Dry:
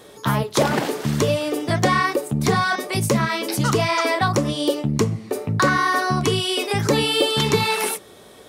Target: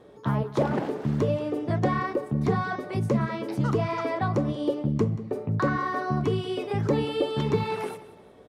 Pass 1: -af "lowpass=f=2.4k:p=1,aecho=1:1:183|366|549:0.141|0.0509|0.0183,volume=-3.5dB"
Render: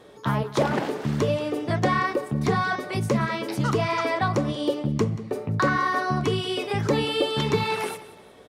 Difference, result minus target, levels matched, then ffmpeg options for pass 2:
2000 Hz band +5.0 dB
-af "lowpass=f=660:p=1,aecho=1:1:183|366|549:0.141|0.0509|0.0183,volume=-3.5dB"

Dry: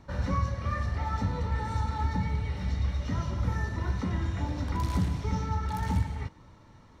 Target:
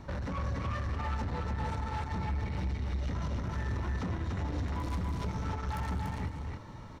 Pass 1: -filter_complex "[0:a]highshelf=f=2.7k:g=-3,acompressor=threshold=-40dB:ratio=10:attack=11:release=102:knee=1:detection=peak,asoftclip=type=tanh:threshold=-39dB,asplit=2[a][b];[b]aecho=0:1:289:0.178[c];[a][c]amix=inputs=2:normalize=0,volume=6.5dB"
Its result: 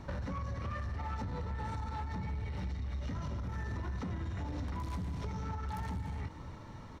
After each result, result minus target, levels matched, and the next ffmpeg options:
echo-to-direct -11.5 dB; compressor: peak gain reduction +5.5 dB
-filter_complex "[0:a]highshelf=f=2.7k:g=-3,acompressor=threshold=-40dB:ratio=10:attack=11:release=102:knee=1:detection=peak,asoftclip=type=tanh:threshold=-39dB,asplit=2[a][b];[b]aecho=0:1:289:0.668[c];[a][c]amix=inputs=2:normalize=0,volume=6.5dB"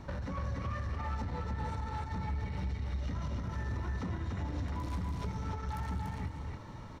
compressor: peak gain reduction +5.5 dB
-filter_complex "[0:a]highshelf=f=2.7k:g=-3,acompressor=threshold=-34dB:ratio=10:attack=11:release=102:knee=1:detection=peak,asoftclip=type=tanh:threshold=-39dB,asplit=2[a][b];[b]aecho=0:1:289:0.668[c];[a][c]amix=inputs=2:normalize=0,volume=6.5dB"

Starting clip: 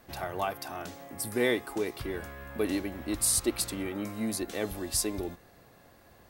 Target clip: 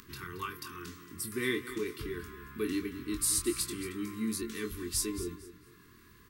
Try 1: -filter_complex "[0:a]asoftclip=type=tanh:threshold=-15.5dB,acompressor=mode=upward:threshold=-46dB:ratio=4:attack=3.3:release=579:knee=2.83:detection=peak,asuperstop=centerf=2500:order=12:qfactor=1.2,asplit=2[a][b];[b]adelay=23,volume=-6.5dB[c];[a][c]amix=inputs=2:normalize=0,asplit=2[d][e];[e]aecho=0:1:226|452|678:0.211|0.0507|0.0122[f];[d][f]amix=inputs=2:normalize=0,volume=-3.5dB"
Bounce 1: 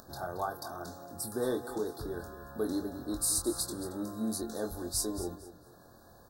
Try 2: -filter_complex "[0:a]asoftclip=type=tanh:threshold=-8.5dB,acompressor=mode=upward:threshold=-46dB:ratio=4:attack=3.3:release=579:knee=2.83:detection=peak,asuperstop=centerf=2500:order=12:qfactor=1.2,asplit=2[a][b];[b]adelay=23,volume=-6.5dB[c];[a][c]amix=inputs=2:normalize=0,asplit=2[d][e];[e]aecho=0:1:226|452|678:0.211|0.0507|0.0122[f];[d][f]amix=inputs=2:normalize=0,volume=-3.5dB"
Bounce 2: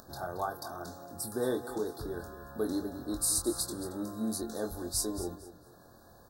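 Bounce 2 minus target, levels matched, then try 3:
2000 Hz band -8.0 dB
-filter_complex "[0:a]asoftclip=type=tanh:threshold=-8.5dB,acompressor=mode=upward:threshold=-46dB:ratio=4:attack=3.3:release=579:knee=2.83:detection=peak,asuperstop=centerf=660:order=12:qfactor=1.2,asplit=2[a][b];[b]adelay=23,volume=-6.5dB[c];[a][c]amix=inputs=2:normalize=0,asplit=2[d][e];[e]aecho=0:1:226|452|678:0.211|0.0507|0.0122[f];[d][f]amix=inputs=2:normalize=0,volume=-3.5dB"

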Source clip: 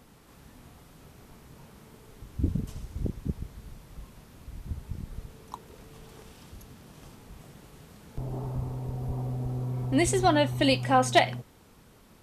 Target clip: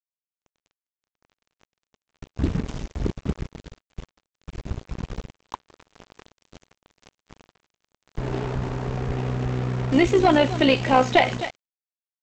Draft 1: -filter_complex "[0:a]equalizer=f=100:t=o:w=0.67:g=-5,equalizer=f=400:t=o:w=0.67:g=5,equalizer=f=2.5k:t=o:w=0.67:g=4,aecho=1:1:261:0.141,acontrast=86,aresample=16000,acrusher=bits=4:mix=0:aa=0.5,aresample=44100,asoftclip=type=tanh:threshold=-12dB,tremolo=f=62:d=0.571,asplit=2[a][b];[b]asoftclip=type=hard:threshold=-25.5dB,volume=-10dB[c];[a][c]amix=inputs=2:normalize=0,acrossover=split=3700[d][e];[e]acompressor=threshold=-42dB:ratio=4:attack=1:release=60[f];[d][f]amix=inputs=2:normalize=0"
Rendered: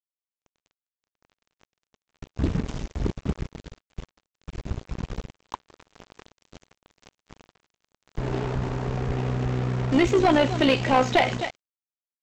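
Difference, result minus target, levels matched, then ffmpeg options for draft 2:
soft clip: distortion +10 dB
-filter_complex "[0:a]equalizer=f=100:t=o:w=0.67:g=-5,equalizer=f=400:t=o:w=0.67:g=5,equalizer=f=2.5k:t=o:w=0.67:g=4,aecho=1:1:261:0.141,acontrast=86,aresample=16000,acrusher=bits=4:mix=0:aa=0.5,aresample=44100,asoftclip=type=tanh:threshold=-5dB,tremolo=f=62:d=0.571,asplit=2[a][b];[b]asoftclip=type=hard:threshold=-25.5dB,volume=-10dB[c];[a][c]amix=inputs=2:normalize=0,acrossover=split=3700[d][e];[e]acompressor=threshold=-42dB:ratio=4:attack=1:release=60[f];[d][f]amix=inputs=2:normalize=0"

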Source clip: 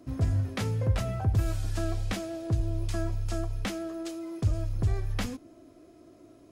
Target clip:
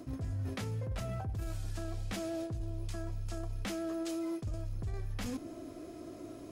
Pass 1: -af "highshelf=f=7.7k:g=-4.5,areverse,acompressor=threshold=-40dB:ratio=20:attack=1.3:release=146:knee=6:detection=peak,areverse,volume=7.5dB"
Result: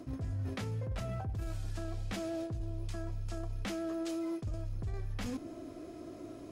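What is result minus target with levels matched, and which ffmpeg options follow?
8000 Hz band -3.0 dB
-af "highshelf=f=7.7k:g=2,areverse,acompressor=threshold=-40dB:ratio=20:attack=1.3:release=146:knee=6:detection=peak,areverse,volume=7.5dB"

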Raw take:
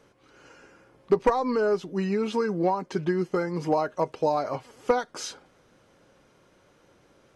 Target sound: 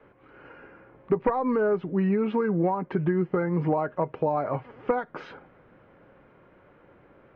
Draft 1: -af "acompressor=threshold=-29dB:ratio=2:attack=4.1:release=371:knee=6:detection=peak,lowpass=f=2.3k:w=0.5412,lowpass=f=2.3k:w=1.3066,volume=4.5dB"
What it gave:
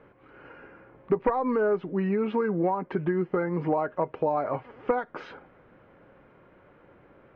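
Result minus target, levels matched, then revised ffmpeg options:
125 Hz band -3.5 dB
-af "acompressor=threshold=-29dB:ratio=2:attack=4.1:release=371:knee=6:detection=peak,lowpass=f=2.3k:w=0.5412,lowpass=f=2.3k:w=1.3066,adynamicequalizer=threshold=0.00398:dfrequency=140:dqfactor=1.3:tfrequency=140:tqfactor=1.3:attack=5:release=100:ratio=0.417:range=3:mode=boostabove:tftype=bell,volume=4.5dB"

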